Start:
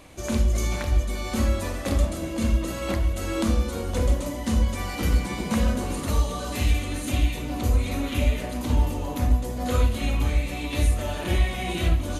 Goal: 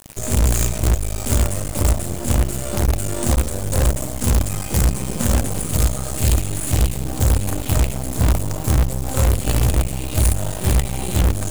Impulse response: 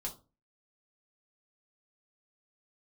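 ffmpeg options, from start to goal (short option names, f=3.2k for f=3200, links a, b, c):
-af "equalizer=f=125:t=o:w=1:g=11,equalizer=f=250:t=o:w=1:g=-7,equalizer=f=1k:t=o:w=1:g=-6,equalizer=f=2k:t=o:w=1:g=-7,equalizer=f=4k:t=o:w=1:g=-8,equalizer=f=8k:t=o:w=1:g=12,asetrate=46746,aresample=44100,acrusher=bits=4:dc=4:mix=0:aa=0.000001,asoftclip=type=tanh:threshold=-19dB,volume=8.5dB"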